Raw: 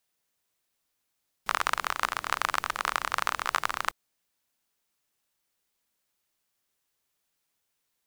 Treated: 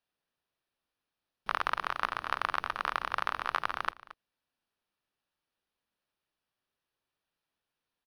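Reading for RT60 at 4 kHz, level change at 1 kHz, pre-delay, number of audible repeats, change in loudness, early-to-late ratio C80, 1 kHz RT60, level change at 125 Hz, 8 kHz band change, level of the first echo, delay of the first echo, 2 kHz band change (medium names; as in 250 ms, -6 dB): no reverb, -3.0 dB, no reverb, 1, -3.5 dB, no reverb, no reverb, -2.5 dB, -18.0 dB, -17.0 dB, 225 ms, -4.0 dB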